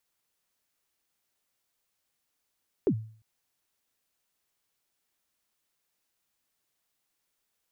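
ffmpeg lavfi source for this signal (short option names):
-f lavfi -i "aevalsrc='0.126*pow(10,-3*t/0.47)*sin(2*PI*(460*0.071/log(110/460)*(exp(log(110/460)*min(t,0.071)/0.071)-1)+110*max(t-0.071,0)))':d=0.35:s=44100"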